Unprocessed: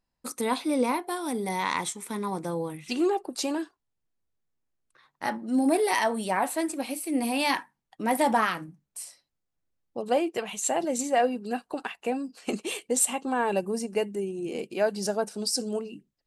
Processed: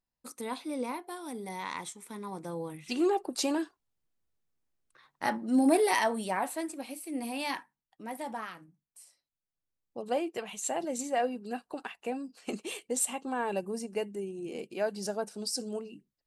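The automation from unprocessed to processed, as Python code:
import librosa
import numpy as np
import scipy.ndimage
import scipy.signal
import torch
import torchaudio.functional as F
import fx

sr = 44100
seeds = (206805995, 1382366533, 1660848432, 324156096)

y = fx.gain(x, sr, db=fx.line((2.22, -9.5), (3.25, -0.5), (5.78, -0.5), (6.82, -8.5), (7.57, -8.5), (8.19, -15.0), (9.04, -15.0), (9.99, -6.0)))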